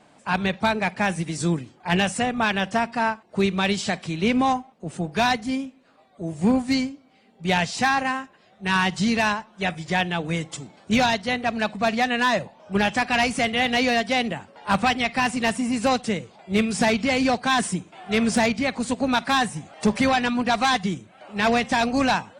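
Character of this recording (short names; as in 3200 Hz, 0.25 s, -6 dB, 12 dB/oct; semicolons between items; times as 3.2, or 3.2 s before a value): noise floor -56 dBFS; spectral tilt -4.5 dB/oct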